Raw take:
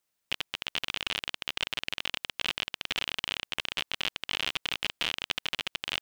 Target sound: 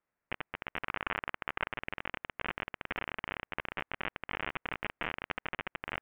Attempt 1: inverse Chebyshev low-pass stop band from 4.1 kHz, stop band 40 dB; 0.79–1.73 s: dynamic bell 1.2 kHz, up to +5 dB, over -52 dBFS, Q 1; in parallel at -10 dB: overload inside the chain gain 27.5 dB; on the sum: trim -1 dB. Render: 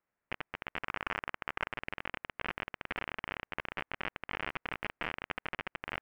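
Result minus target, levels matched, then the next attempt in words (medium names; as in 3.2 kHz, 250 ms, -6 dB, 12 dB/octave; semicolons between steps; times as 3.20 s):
overload inside the chain: distortion +21 dB
inverse Chebyshev low-pass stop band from 4.1 kHz, stop band 40 dB; 0.79–1.73 s: dynamic bell 1.2 kHz, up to +5 dB, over -52 dBFS, Q 1; in parallel at -10 dB: overload inside the chain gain 18.5 dB; on the sum: trim -1 dB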